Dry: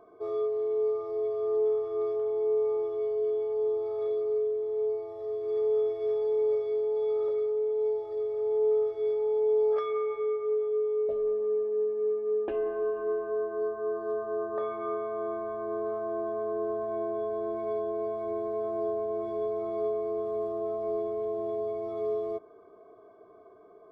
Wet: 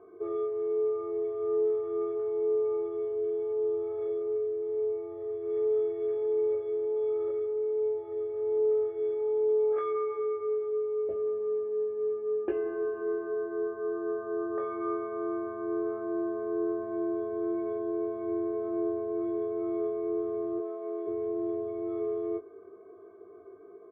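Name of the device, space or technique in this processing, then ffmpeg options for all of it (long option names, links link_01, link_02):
bass cabinet: -filter_complex "[0:a]asplit=3[link_01][link_02][link_03];[link_01]afade=type=out:start_time=20.58:duration=0.02[link_04];[link_02]highpass=450,afade=type=in:start_time=20.58:duration=0.02,afade=type=out:start_time=21.06:duration=0.02[link_05];[link_03]afade=type=in:start_time=21.06:duration=0.02[link_06];[link_04][link_05][link_06]amix=inputs=3:normalize=0,highpass=68,equalizer=frequency=81:width_type=q:width=4:gain=10,equalizer=frequency=130:width_type=q:width=4:gain=-10,equalizer=frequency=240:width_type=q:width=4:gain=-4,equalizer=frequency=370:width_type=q:width=4:gain=10,equalizer=frequency=630:width_type=q:width=4:gain=-8,equalizer=frequency=940:width_type=q:width=4:gain=-8,lowpass=frequency=2400:width=0.5412,lowpass=frequency=2400:width=1.3066,asplit=2[link_07][link_08];[link_08]adelay=20,volume=-6dB[link_09];[link_07][link_09]amix=inputs=2:normalize=0"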